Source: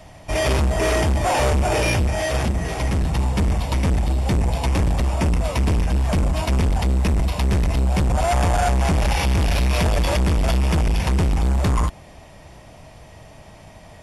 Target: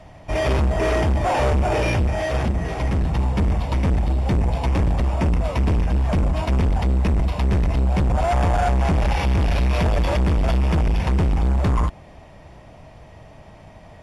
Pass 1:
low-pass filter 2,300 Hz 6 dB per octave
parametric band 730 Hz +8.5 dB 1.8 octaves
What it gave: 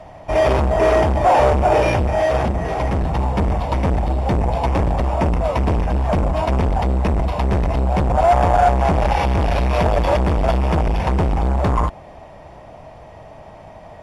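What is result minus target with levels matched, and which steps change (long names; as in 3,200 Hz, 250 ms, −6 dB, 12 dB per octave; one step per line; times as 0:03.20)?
1,000 Hz band +5.0 dB
remove: parametric band 730 Hz +8.5 dB 1.8 octaves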